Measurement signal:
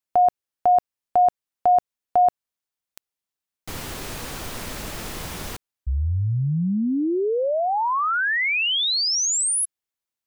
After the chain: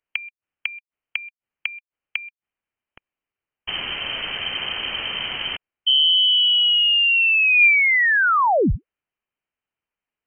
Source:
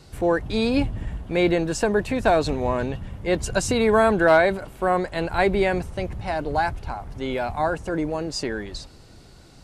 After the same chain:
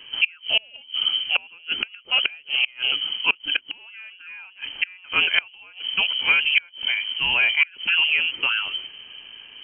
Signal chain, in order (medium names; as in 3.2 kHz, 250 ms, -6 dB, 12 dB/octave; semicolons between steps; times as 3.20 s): inverted gate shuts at -13 dBFS, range -31 dB; peaking EQ 700 Hz +5.5 dB 0.24 oct; frequency inversion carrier 3.1 kHz; trim +5 dB